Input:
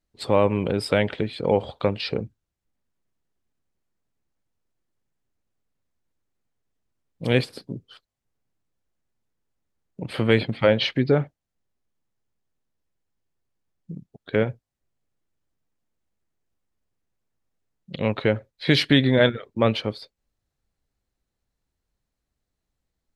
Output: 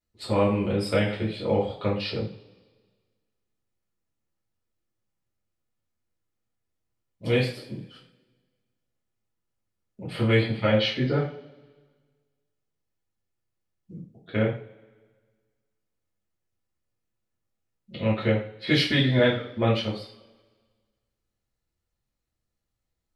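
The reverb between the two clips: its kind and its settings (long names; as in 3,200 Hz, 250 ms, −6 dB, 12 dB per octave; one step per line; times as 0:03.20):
coupled-rooms reverb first 0.4 s, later 1.6 s, from −22 dB, DRR −7 dB
level −10 dB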